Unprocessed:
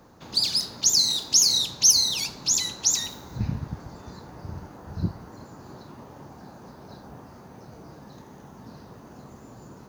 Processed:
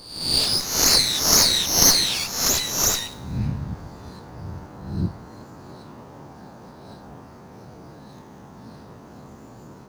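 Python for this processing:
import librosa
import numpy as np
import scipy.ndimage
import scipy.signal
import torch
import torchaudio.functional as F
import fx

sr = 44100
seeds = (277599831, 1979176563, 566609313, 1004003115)

y = fx.spec_swells(x, sr, rise_s=0.73)
y = fx.running_max(y, sr, window=3)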